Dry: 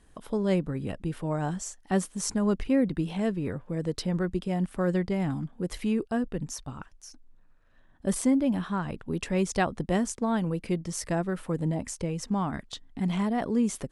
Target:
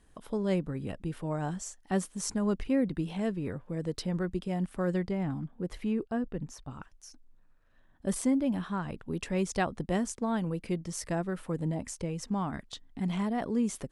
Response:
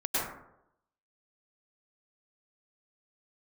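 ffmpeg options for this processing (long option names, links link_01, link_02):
-filter_complex "[0:a]asettb=1/sr,asplit=3[link_01][link_02][link_03];[link_01]atrim=end=5.114[link_04];[link_02]atrim=start=5.11:end=6.71,asetpts=PTS-STARTPTS,afade=type=in:duration=0.004:curve=qsin,afade=type=out:start_time=1.596:duration=0.004:curve=qsin,highshelf=frequency=3600:gain=-10[link_05];[link_03]atrim=start=6.706[link_06];[link_04][link_05]acrossfade=duration=0.004:curve1=hsin:curve2=qsin[link_07];[link_07][link_06]acrossfade=duration=0.004:curve1=qsin:curve2=hsin,volume=-3.5dB"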